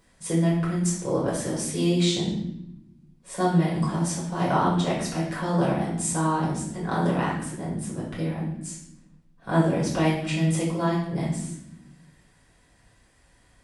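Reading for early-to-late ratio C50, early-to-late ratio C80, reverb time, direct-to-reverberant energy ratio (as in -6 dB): 3.0 dB, 6.5 dB, 0.85 s, -7.0 dB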